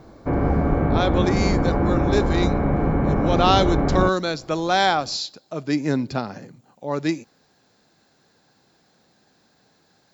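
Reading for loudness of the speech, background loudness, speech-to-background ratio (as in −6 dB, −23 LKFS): −24.0 LKFS, −21.5 LKFS, −2.5 dB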